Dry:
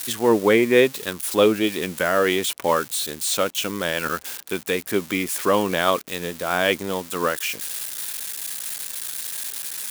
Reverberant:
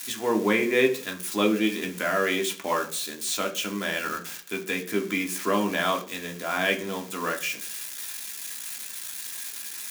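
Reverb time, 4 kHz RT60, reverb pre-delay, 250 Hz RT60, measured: 0.40 s, 0.55 s, 3 ms, 0.55 s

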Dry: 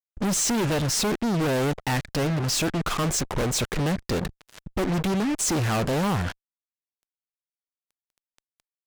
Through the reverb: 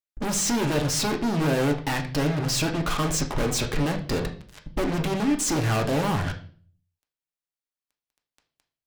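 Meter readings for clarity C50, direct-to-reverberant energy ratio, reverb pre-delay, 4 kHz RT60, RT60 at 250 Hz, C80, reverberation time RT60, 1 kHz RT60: 11.5 dB, 3.0 dB, 3 ms, 0.45 s, 0.65 s, 16.0 dB, 0.45 s, 0.40 s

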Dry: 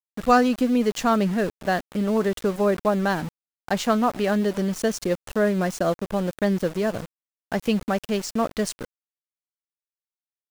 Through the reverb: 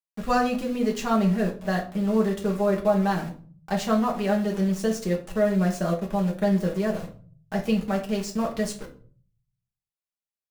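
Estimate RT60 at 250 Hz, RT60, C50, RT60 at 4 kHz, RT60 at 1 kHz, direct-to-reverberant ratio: 0.75 s, 0.45 s, 11.5 dB, 0.30 s, 0.40 s, -1.5 dB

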